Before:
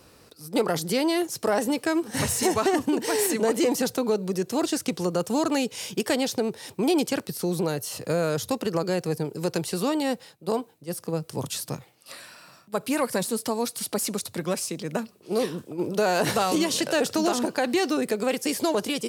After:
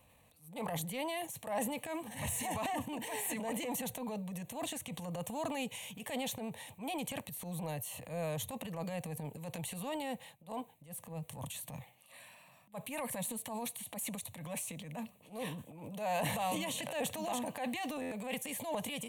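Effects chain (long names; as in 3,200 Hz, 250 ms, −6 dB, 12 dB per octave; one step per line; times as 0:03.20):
phaser with its sweep stopped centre 1,400 Hz, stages 6
transient designer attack −10 dB, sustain +7 dB
buffer that repeats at 0:18.01, samples 512, times 8
level −7.5 dB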